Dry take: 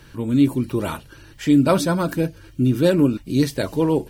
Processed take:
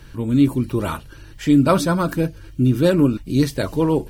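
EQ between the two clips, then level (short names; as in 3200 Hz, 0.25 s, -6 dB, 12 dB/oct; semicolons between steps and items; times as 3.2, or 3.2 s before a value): low shelf 74 Hz +10.5 dB; dynamic EQ 1200 Hz, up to +5 dB, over -40 dBFS, Q 3.2; 0.0 dB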